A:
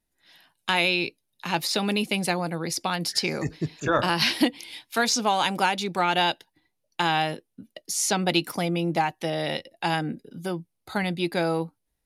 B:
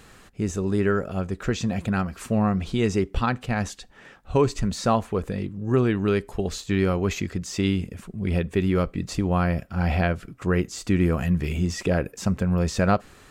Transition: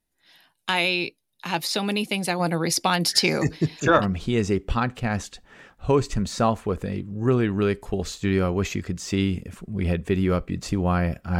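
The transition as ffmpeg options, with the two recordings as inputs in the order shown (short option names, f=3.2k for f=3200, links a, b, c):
-filter_complex "[0:a]asplit=3[a][b][c];[a]afade=t=out:st=2.39:d=0.02[d];[b]acontrast=47,afade=t=in:st=2.39:d=0.02,afade=t=out:st=4.06:d=0.02[e];[c]afade=t=in:st=4.06:d=0.02[f];[d][e][f]amix=inputs=3:normalize=0,apad=whole_dur=11.39,atrim=end=11.39,atrim=end=4.06,asetpts=PTS-STARTPTS[g];[1:a]atrim=start=2.42:end=9.85,asetpts=PTS-STARTPTS[h];[g][h]acrossfade=d=0.1:c1=tri:c2=tri"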